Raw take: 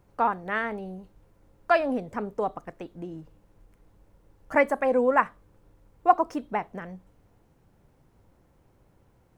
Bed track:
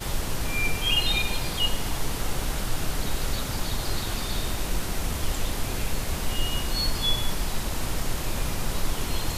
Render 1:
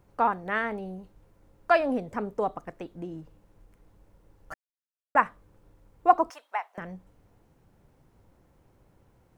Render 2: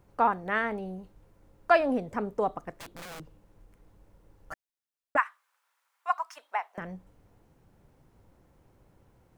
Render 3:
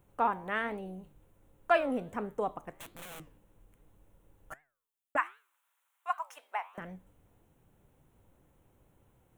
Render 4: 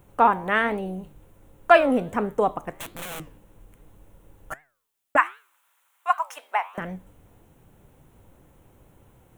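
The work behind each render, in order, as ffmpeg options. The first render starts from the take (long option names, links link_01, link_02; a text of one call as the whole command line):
ffmpeg -i in.wav -filter_complex "[0:a]asettb=1/sr,asplit=3[link_01][link_02][link_03];[link_01]atrim=end=6.304[link_04];[link_02]atrim=start=6.3:end=6.78,asetpts=PTS-STARTPTS,afade=type=in:duration=0.004:curve=qsin,afade=type=out:start_time=0.476:duration=0.004:curve=qsin,highpass=frequency=760:width=0.5412,highpass=frequency=760:width=1.3066[link_05];[link_03]atrim=start=6.776[link_06];[link_04][link_05]acrossfade=duration=0.004:curve1=hsin:curve2=qsin[link_07];[link_07][link_06]acrossfade=duration=0.004:curve1=qsin:curve2=hsin,asplit=3[link_08][link_09][link_10];[link_08]atrim=end=4.54,asetpts=PTS-STARTPTS,afade=type=out:start_time=4.536:duration=0.004:curve=hsin[link_11];[link_09]atrim=start=4.54:end=5.15,asetpts=PTS-STARTPTS,volume=0[link_12];[link_10]atrim=start=5.15,asetpts=PTS-STARTPTS,afade=type=in:duration=0.004:curve=hsin[link_13];[link_11][link_12][link_13]concat=n=3:v=0:a=1" out.wav
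ffmpeg -i in.wav -filter_complex "[0:a]asettb=1/sr,asplit=3[link_01][link_02][link_03];[link_01]atrim=end=2.784[link_04];[link_02]atrim=start=2.78:end=3.2,asetpts=PTS-STARTPTS,afade=type=in:duration=0.004:curve=qsin,afade=type=out:start_time=0.416:duration=0.004:curve=qsin,aeval=exprs='(mod(79.4*val(0)+1,2)-1)/79.4':channel_layout=same[link_05];[link_03]atrim=start=3.196[link_06];[link_04][link_05]acrossfade=duration=0.004:curve1=hsin:curve2=qsin[link_07];[link_07][link_06]acrossfade=duration=0.004:curve1=qsin:curve2=hsin,asplit=3[link_08][link_09][link_10];[link_08]afade=type=out:start_time=5.16:duration=0.02[link_11];[link_09]highpass=frequency=1100:width=0.5412,highpass=frequency=1100:width=1.3066,afade=type=in:start_time=5.16:duration=0.02,afade=type=out:start_time=6.36:duration=0.02[link_12];[link_10]afade=type=in:start_time=6.36:duration=0.02[link_13];[link_11][link_12][link_13]amix=inputs=3:normalize=0" out.wav
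ffmpeg -i in.wav -af "aexciter=amount=1.1:drive=4.2:freq=2600,flanger=delay=6.3:depth=8:regen=88:speed=1.3:shape=triangular" out.wav
ffmpeg -i in.wav -af "volume=11dB" out.wav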